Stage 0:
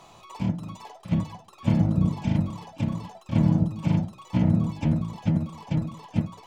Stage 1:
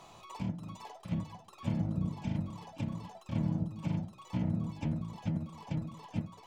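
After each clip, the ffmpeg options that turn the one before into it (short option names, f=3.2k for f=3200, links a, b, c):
-af "acompressor=threshold=-39dB:ratio=1.5,volume=-3.5dB"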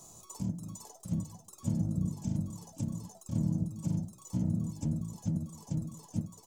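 -af "firequalizer=gain_entry='entry(200,0);entry(840,-10);entry(1300,-11);entry(2300,-19);entry(6600,13)':delay=0.05:min_phase=1,volume=1.5dB"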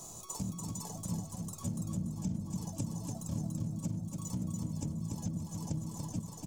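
-af "acompressor=threshold=-40dB:ratio=6,aecho=1:1:288|576|864|1152:0.631|0.215|0.0729|0.0248,volume=5.5dB"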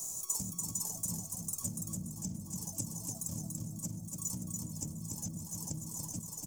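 -af "aexciter=amount=3.4:drive=8.5:freq=5.3k,volume=-5.5dB"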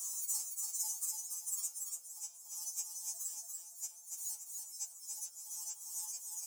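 -af "highpass=f=1k:w=0.5412,highpass=f=1k:w=1.3066,afftfilt=real='re*2.83*eq(mod(b,8),0)':imag='im*2.83*eq(mod(b,8),0)':win_size=2048:overlap=0.75,volume=3dB"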